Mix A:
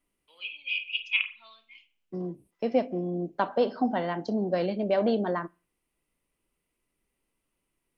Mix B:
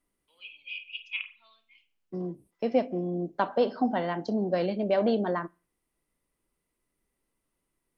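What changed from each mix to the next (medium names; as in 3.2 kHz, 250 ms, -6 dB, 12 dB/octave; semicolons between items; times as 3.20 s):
first voice -8.0 dB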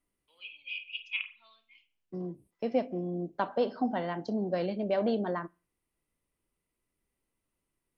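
second voice -4.0 dB; master: add peaking EQ 87 Hz +5.5 dB 1.1 oct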